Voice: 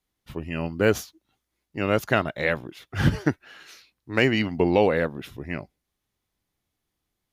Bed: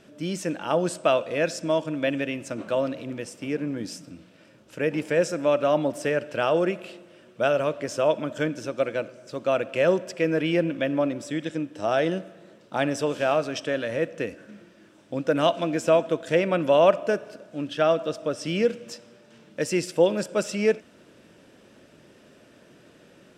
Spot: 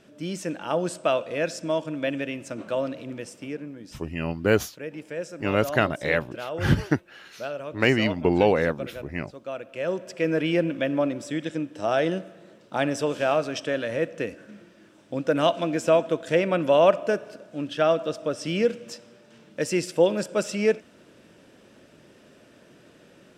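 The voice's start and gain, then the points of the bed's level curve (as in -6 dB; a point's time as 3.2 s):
3.65 s, 0.0 dB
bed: 3.37 s -2 dB
3.76 s -10.5 dB
9.67 s -10.5 dB
10.29 s 0 dB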